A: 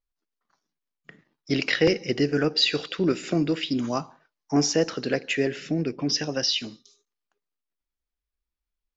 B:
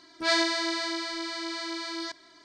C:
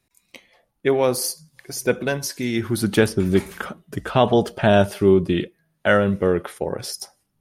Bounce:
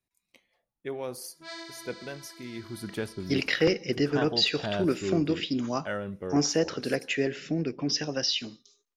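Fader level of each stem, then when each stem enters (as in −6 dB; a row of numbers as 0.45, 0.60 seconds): −3.0, −17.0, −16.5 decibels; 1.80, 1.20, 0.00 seconds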